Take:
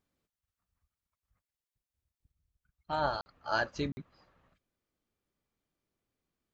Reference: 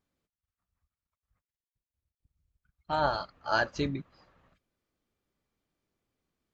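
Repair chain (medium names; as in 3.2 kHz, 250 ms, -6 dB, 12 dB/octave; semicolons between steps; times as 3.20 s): interpolate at 3.21/3.92 s, 50 ms; gain correction +3.5 dB, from 2.32 s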